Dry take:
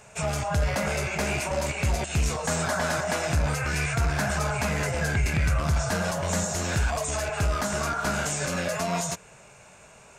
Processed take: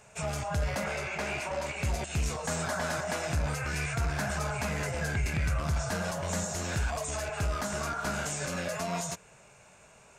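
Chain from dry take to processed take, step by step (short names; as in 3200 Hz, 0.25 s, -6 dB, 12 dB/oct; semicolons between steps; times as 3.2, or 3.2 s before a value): 0.84–1.76 overdrive pedal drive 7 dB, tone 3000 Hz, clips at -16 dBFS; gain -5.5 dB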